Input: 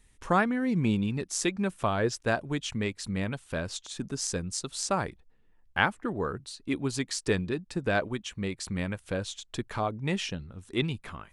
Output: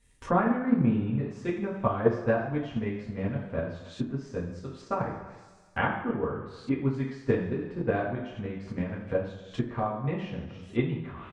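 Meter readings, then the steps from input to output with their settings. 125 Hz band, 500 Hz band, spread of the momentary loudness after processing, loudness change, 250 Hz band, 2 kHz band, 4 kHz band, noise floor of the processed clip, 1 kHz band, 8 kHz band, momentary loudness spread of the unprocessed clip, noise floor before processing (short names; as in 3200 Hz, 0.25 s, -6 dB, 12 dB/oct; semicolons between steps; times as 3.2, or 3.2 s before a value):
+2.0 dB, +2.0 dB, 11 LU, +0.5 dB, +2.0 dB, -4.5 dB, -13.5 dB, -53 dBFS, 0.0 dB, under -20 dB, 9 LU, -62 dBFS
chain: on a send: echo 0.284 s -21.5 dB; on the sum: two-slope reverb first 0.67 s, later 2.1 s, DRR -6 dB; transient shaper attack +7 dB, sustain +3 dB; treble ducked by the level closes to 1500 Hz, closed at -24 dBFS; gain -8.5 dB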